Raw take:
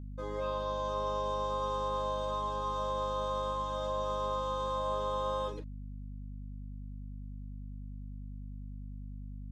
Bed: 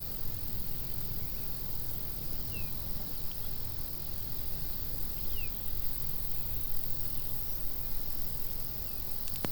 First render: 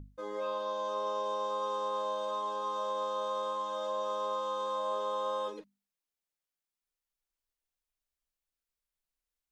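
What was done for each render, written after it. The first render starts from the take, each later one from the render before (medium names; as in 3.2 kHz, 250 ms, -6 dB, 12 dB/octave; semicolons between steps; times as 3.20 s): hum notches 50/100/150/200/250 Hz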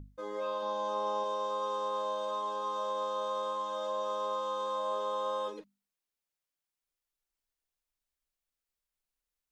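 0.62–1.24 s: small resonant body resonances 240/850/1800 Hz, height 9 dB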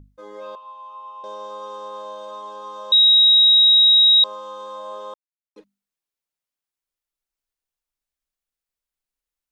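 0.55–1.24 s: two resonant band-passes 1.7 kHz, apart 1.3 oct; 2.92–4.24 s: bleep 3.81 kHz -9.5 dBFS; 5.14–5.56 s: mute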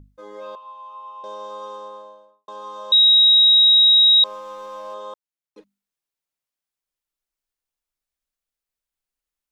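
1.62–2.48 s: studio fade out; 4.25–4.94 s: median filter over 15 samples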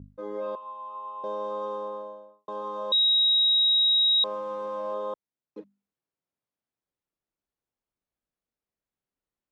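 Bessel high-pass 200 Hz, order 2; tilt EQ -4.5 dB/octave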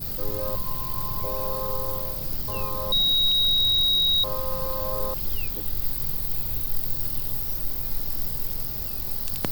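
add bed +6.5 dB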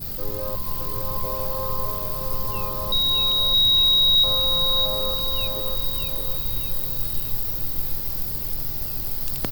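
feedback delay 616 ms, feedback 48%, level -4 dB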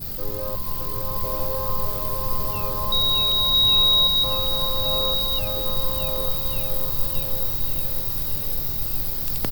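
feedback delay 1150 ms, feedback 32%, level -4 dB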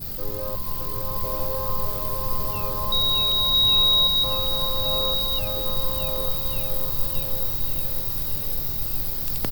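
trim -1 dB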